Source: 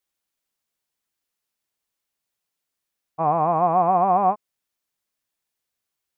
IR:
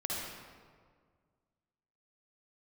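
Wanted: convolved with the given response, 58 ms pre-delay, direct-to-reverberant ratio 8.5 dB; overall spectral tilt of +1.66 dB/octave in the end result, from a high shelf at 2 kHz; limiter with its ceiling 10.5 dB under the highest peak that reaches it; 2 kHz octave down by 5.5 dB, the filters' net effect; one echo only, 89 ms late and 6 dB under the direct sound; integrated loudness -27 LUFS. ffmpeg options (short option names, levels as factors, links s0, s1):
-filter_complex "[0:a]highshelf=f=2000:g=-6.5,equalizer=f=2000:t=o:g=-4,alimiter=limit=0.0944:level=0:latency=1,aecho=1:1:89:0.501,asplit=2[s0][s1];[1:a]atrim=start_sample=2205,adelay=58[s2];[s1][s2]afir=irnorm=-1:irlink=0,volume=0.237[s3];[s0][s3]amix=inputs=2:normalize=0,volume=1.12"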